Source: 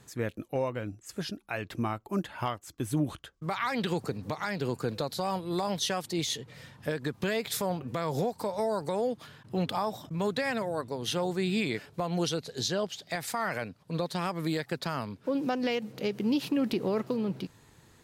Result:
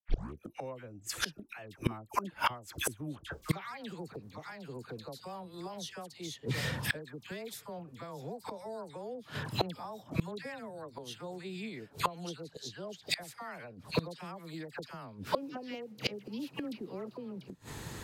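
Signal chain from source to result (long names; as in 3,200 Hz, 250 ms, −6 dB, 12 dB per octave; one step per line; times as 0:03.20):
turntable start at the beginning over 0.36 s
all-pass dispersion lows, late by 83 ms, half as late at 1,200 Hz
gate with flip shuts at −31 dBFS, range −27 dB
level +14.5 dB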